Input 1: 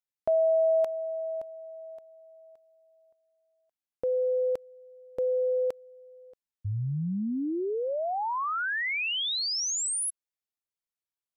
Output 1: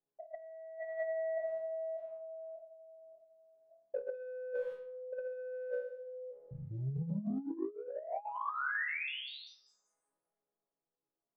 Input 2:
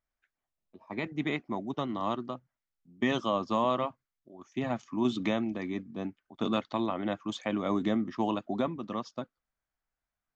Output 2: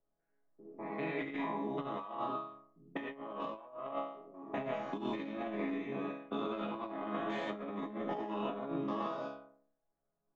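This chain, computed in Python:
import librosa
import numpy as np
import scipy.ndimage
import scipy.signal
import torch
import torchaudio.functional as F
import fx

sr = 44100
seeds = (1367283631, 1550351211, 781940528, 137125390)

p1 = fx.spec_steps(x, sr, hold_ms=200)
p2 = fx.high_shelf(p1, sr, hz=2800.0, db=-4.0)
p3 = 10.0 ** (-29.0 / 20.0) * np.tanh(p2 / 10.0 ** (-29.0 / 20.0))
p4 = p2 + F.gain(torch.from_numpy(p3), -4.0).numpy()
p5 = fx.bass_treble(p4, sr, bass_db=-13, treble_db=-15)
p6 = fx.resonator_bank(p5, sr, root=49, chord='minor', decay_s=0.58)
p7 = fx.over_compress(p6, sr, threshold_db=-56.0, ratio=-0.5)
p8 = fx.env_lowpass(p7, sr, base_hz=440.0, full_db=-54.0)
p9 = fx.band_squash(p8, sr, depth_pct=40)
y = F.gain(torch.from_numpy(p9), 18.0).numpy()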